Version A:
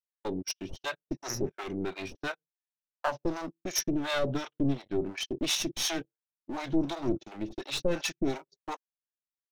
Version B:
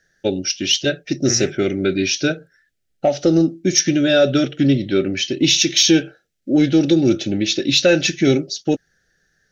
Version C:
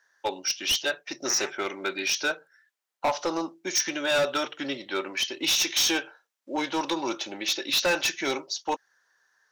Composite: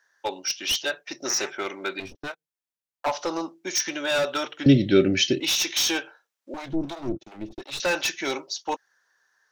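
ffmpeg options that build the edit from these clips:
-filter_complex "[0:a]asplit=2[a][b];[2:a]asplit=4[c][d][e][f];[c]atrim=end=2.002[g];[a]atrim=start=1.998:end=3.062[h];[d]atrim=start=3.058:end=4.662[i];[1:a]atrim=start=4.658:end=5.402[j];[e]atrim=start=5.398:end=6.542[k];[b]atrim=start=6.538:end=7.802[l];[f]atrim=start=7.798[m];[g][h]acrossfade=d=0.004:c1=hsin:c2=hsin[n];[n][i]acrossfade=d=0.004:c1=hsin:c2=hsin[o];[o][j]acrossfade=d=0.004:c1=hsin:c2=hsin[p];[p][k]acrossfade=d=0.004:c1=hsin:c2=hsin[q];[q][l]acrossfade=d=0.004:c1=hsin:c2=hsin[r];[r][m]acrossfade=d=0.004:c1=hsin:c2=hsin"

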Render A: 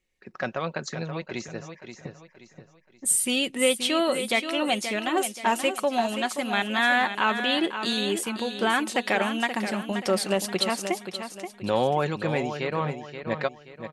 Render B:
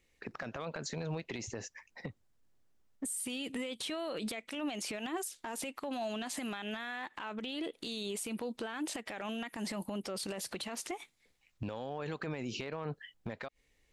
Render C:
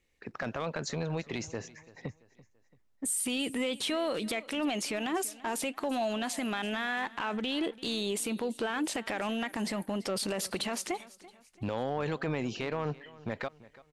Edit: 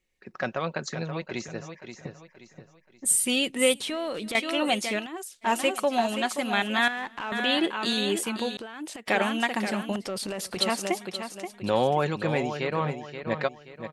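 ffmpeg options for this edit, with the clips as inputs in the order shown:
-filter_complex "[2:a]asplit=3[a][b][c];[1:a]asplit=2[d][e];[0:a]asplit=6[f][g][h][i][j][k];[f]atrim=end=3.742[l];[a]atrim=start=3.738:end=4.352[m];[g]atrim=start=4.348:end=5.07[n];[d]atrim=start=4.97:end=5.51[o];[h]atrim=start=5.41:end=6.882[p];[b]atrim=start=6.878:end=7.322[q];[i]atrim=start=7.318:end=8.572[r];[e]atrim=start=8.568:end=9.082[s];[j]atrim=start=9.078:end=9.962[t];[c]atrim=start=9.958:end=10.572[u];[k]atrim=start=10.568[v];[l][m]acrossfade=d=0.004:c1=hsin:c2=hsin[w];[w][n]acrossfade=d=0.004:c1=hsin:c2=hsin[x];[x][o]acrossfade=d=0.1:c1=tri:c2=tri[y];[y][p]acrossfade=d=0.1:c1=tri:c2=tri[z];[z][q]acrossfade=d=0.004:c1=hsin:c2=hsin[aa];[aa][r]acrossfade=d=0.004:c1=hsin:c2=hsin[ab];[ab][s]acrossfade=d=0.004:c1=hsin:c2=hsin[ac];[ac][t]acrossfade=d=0.004:c1=hsin:c2=hsin[ad];[ad][u]acrossfade=d=0.004:c1=hsin:c2=hsin[ae];[ae][v]acrossfade=d=0.004:c1=hsin:c2=hsin"

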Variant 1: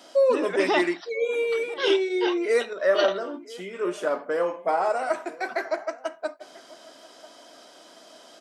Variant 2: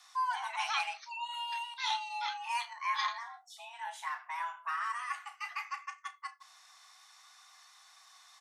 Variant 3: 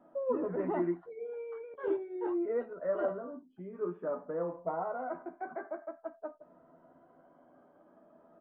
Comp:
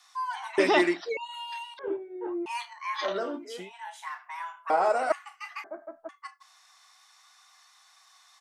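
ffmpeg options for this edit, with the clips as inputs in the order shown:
-filter_complex "[0:a]asplit=3[a][b][c];[2:a]asplit=2[d][e];[1:a]asplit=6[f][g][h][i][j][k];[f]atrim=end=0.582[l];[a]atrim=start=0.578:end=1.172[m];[g]atrim=start=1.168:end=1.792[n];[d]atrim=start=1.788:end=2.462[o];[h]atrim=start=2.458:end=3.17[p];[b]atrim=start=3.01:end=3.72[q];[i]atrim=start=3.56:end=4.702[r];[c]atrim=start=4.698:end=5.122[s];[j]atrim=start=5.118:end=5.642[t];[e]atrim=start=5.638:end=6.092[u];[k]atrim=start=6.088[v];[l][m]acrossfade=d=0.004:c1=hsin:c2=hsin[w];[w][n]acrossfade=d=0.004:c1=hsin:c2=hsin[x];[x][o]acrossfade=d=0.004:c1=hsin:c2=hsin[y];[y][p]acrossfade=d=0.004:c1=hsin:c2=hsin[z];[z][q]acrossfade=d=0.16:c1=tri:c2=tri[aa];[aa][r]acrossfade=d=0.16:c1=tri:c2=tri[ab];[ab][s]acrossfade=d=0.004:c1=hsin:c2=hsin[ac];[ac][t]acrossfade=d=0.004:c1=hsin:c2=hsin[ad];[ad][u]acrossfade=d=0.004:c1=hsin:c2=hsin[ae];[ae][v]acrossfade=d=0.004:c1=hsin:c2=hsin"

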